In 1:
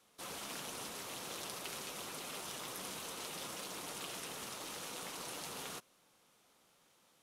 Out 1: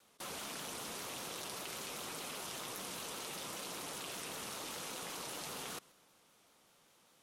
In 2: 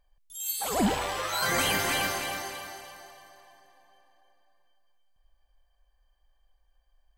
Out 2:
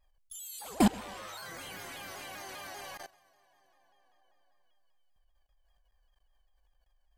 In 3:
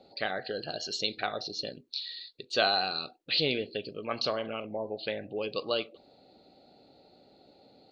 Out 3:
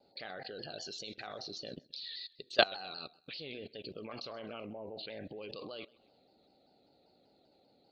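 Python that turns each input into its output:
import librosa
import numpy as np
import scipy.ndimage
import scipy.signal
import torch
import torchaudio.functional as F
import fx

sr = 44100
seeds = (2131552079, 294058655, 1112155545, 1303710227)

p1 = fx.level_steps(x, sr, step_db=24)
p2 = p1 + fx.echo_feedback(p1, sr, ms=129, feedback_pct=44, wet_db=-23.5, dry=0)
p3 = fx.vibrato_shape(p2, sr, shape='saw_down', rate_hz=5.1, depth_cents=100.0)
y = F.gain(torch.from_numpy(p3), 3.5).numpy()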